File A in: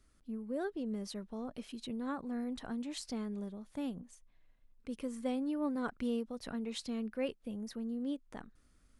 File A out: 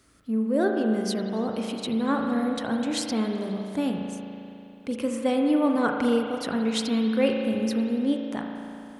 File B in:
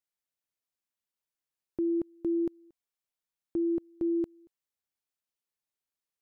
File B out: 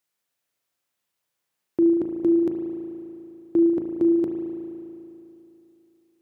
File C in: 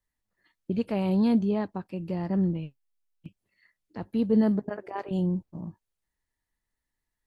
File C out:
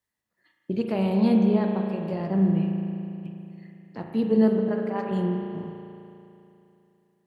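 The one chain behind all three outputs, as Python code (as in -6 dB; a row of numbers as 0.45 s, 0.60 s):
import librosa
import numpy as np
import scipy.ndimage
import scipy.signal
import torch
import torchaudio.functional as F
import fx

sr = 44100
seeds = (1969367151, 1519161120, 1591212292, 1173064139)

y = scipy.signal.sosfilt(scipy.signal.butter(2, 100.0, 'highpass', fs=sr, output='sos'), x)
y = fx.hum_notches(y, sr, base_hz=50, count=5)
y = fx.rev_spring(y, sr, rt60_s=2.9, pass_ms=(36,), chirp_ms=55, drr_db=1.5)
y = y * 10.0 ** (-26 / 20.0) / np.sqrt(np.mean(np.square(y)))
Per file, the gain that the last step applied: +13.0 dB, +10.5 dB, +1.5 dB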